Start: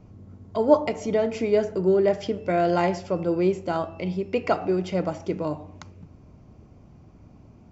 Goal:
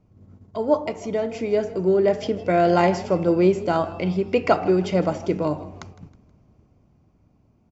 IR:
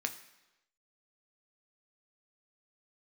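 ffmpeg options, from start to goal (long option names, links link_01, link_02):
-filter_complex "[0:a]agate=range=-8dB:threshold=-45dB:ratio=16:detection=peak,dynaudnorm=framelen=250:gausssize=13:maxgain=11.5dB,asplit=2[link_01][link_02];[link_02]asplit=3[link_03][link_04][link_05];[link_03]adelay=159,afreqshift=41,volume=-18.5dB[link_06];[link_04]adelay=318,afreqshift=82,volume=-26.5dB[link_07];[link_05]adelay=477,afreqshift=123,volume=-34.4dB[link_08];[link_06][link_07][link_08]amix=inputs=3:normalize=0[link_09];[link_01][link_09]amix=inputs=2:normalize=0,volume=-2.5dB"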